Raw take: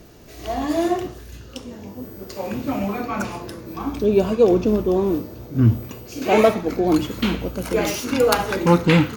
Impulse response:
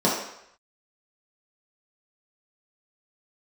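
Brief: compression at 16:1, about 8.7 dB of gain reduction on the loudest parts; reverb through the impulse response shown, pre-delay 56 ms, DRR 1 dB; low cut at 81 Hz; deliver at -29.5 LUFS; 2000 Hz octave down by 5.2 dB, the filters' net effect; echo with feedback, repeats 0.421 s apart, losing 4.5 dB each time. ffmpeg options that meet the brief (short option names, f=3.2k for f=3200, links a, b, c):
-filter_complex "[0:a]highpass=81,equalizer=f=2k:t=o:g=-7,acompressor=threshold=-18dB:ratio=16,aecho=1:1:421|842|1263|1684|2105|2526|2947|3368|3789:0.596|0.357|0.214|0.129|0.0772|0.0463|0.0278|0.0167|0.01,asplit=2[a][b];[1:a]atrim=start_sample=2205,adelay=56[c];[b][c]afir=irnorm=-1:irlink=0,volume=-18dB[d];[a][d]amix=inputs=2:normalize=0,volume=-10.5dB"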